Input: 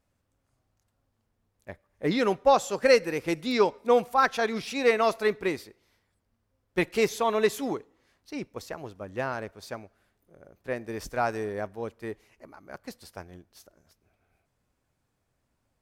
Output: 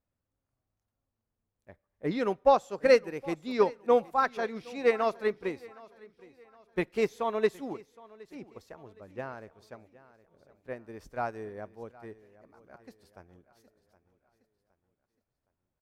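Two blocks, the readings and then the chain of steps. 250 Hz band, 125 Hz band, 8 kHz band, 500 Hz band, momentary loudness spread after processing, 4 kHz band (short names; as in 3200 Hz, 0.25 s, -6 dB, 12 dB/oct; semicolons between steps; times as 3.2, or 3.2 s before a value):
-4.5 dB, -5.5 dB, under -10 dB, -2.5 dB, 21 LU, -9.0 dB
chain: high shelf 2500 Hz -8 dB; feedback echo 0.766 s, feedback 41%, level -16 dB; upward expander 1.5:1, over -36 dBFS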